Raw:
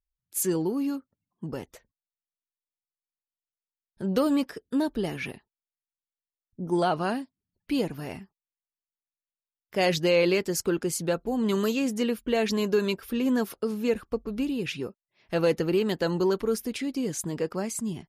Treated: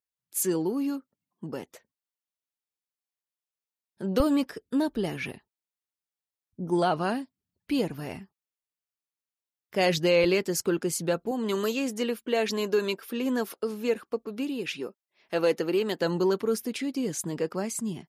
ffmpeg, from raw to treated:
ffmpeg -i in.wav -af "asetnsamples=nb_out_samples=441:pad=0,asendcmd='4.2 highpass f 51;10.24 highpass f 110;11.31 highpass f 270;15.99 highpass f 130',highpass=170" out.wav

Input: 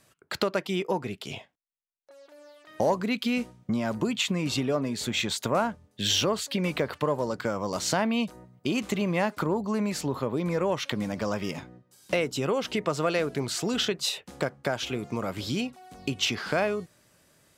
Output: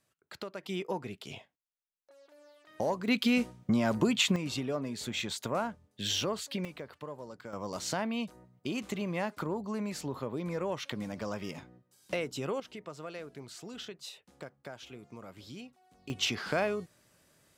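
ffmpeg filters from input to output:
ffmpeg -i in.wav -af "asetnsamples=nb_out_samples=441:pad=0,asendcmd='0.63 volume volume -7dB;3.08 volume volume 0.5dB;4.36 volume volume -7dB;6.65 volume volume -16dB;7.53 volume volume -7.5dB;12.6 volume volume -16.5dB;16.1 volume volume -4dB',volume=-14.5dB" out.wav

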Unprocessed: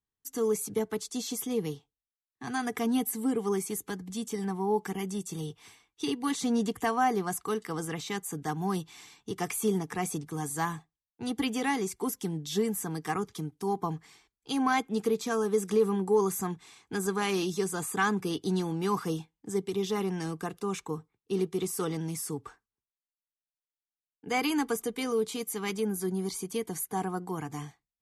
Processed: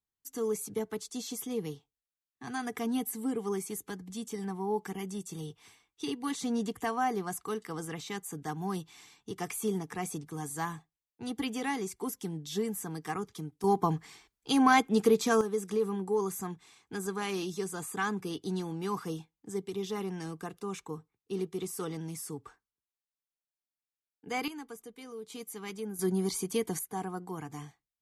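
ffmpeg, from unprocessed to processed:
ffmpeg -i in.wav -af "asetnsamples=nb_out_samples=441:pad=0,asendcmd='13.64 volume volume 4dB;15.41 volume volume -5dB;24.48 volume volume -15dB;25.3 volume volume -8dB;25.99 volume volume 2dB;26.79 volume volume -4.5dB',volume=-4dB" out.wav

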